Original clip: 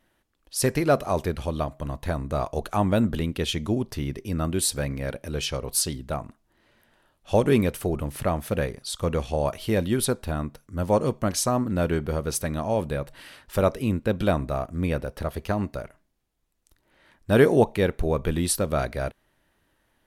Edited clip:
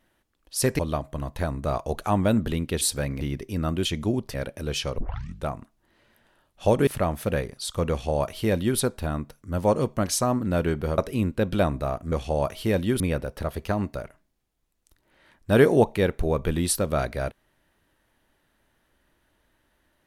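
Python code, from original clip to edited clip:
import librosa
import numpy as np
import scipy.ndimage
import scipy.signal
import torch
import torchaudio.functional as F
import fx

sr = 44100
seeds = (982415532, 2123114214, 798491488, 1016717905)

y = fx.edit(x, sr, fx.cut(start_s=0.79, length_s=0.67),
    fx.swap(start_s=3.48, length_s=0.49, other_s=4.61, other_length_s=0.4),
    fx.tape_start(start_s=5.65, length_s=0.48),
    fx.cut(start_s=7.54, length_s=0.58),
    fx.duplicate(start_s=9.15, length_s=0.88, to_s=14.8),
    fx.cut(start_s=12.23, length_s=1.43), tone=tone)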